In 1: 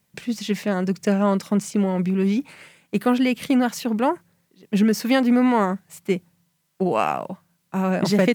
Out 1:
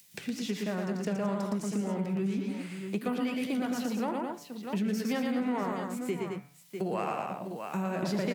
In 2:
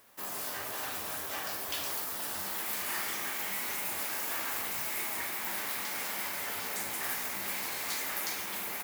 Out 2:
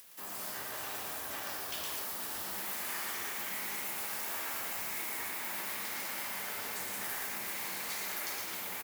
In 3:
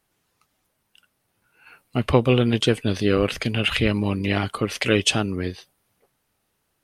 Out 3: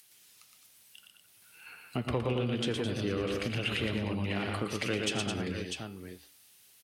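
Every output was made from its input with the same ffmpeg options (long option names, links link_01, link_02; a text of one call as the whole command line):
ffmpeg -i in.wav -filter_complex "[0:a]acrossover=split=390|2400[link_01][link_02][link_03];[link_03]acompressor=mode=upward:threshold=-41dB:ratio=2.5[link_04];[link_01][link_02][link_04]amix=inputs=3:normalize=0,flanger=delay=5.1:depth=6.5:regen=-81:speed=2:shape=sinusoidal,asplit=2[link_05][link_06];[link_06]aecho=0:1:83|115|213|647:0.141|0.631|0.376|0.211[link_07];[link_05][link_07]amix=inputs=2:normalize=0,asoftclip=type=tanh:threshold=-9.5dB,highpass=63,bandreject=frequency=144.1:width_type=h:width=4,bandreject=frequency=288.2:width_type=h:width=4,bandreject=frequency=432.3:width_type=h:width=4,bandreject=frequency=576.4:width_type=h:width=4,bandreject=frequency=720.5:width_type=h:width=4,bandreject=frequency=864.6:width_type=h:width=4,bandreject=frequency=1008.7:width_type=h:width=4,bandreject=frequency=1152.8:width_type=h:width=4,bandreject=frequency=1296.9:width_type=h:width=4,bandreject=frequency=1441:width_type=h:width=4,bandreject=frequency=1585.1:width_type=h:width=4,bandreject=frequency=1729.2:width_type=h:width=4,bandreject=frequency=1873.3:width_type=h:width=4,bandreject=frequency=2017.4:width_type=h:width=4,bandreject=frequency=2161.5:width_type=h:width=4,bandreject=frequency=2305.6:width_type=h:width=4,bandreject=frequency=2449.7:width_type=h:width=4,bandreject=frequency=2593.8:width_type=h:width=4,bandreject=frequency=2737.9:width_type=h:width=4,bandreject=frequency=2882:width_type=h:width=4,bandreject=frequency=3026.1:width_type=h:width=4,bandreject=frequency=3170.2:width_type=h:width=4,bandreject=frequency=3314.3:width_type=h:width=4,bandreject=frequency=3458.4:width_type=h:width=4,bandreject=frequency=3602.5:width_type=h:width=4,bandreject=frequency=3746.6:width_type=h:width=4,bandreject=frequency=3890.7:width_type=h:width=4,bandreject=frequency=4034.8:width_type=h:width=4,bandreject=frequency=4178.9:width_type=h:width=4,bandreject=frequency=4323:width_type=h:width=4,bandreject=frequency=4467.1:width_type=h:width=4,bandreject=frequency=4611.2:width_type=h:width=4,bandreject=frequency=4755.3:width_type=h:width=4,bandreject=frequency=4899.4:width_type=h:width=4,bandreject=frequency=5043.5:width_type=h:width=4,bandreject=frequency=5187.6:width_type=h:width=4,acompressor=threshold=-32dB:ratio=2.5" out.wav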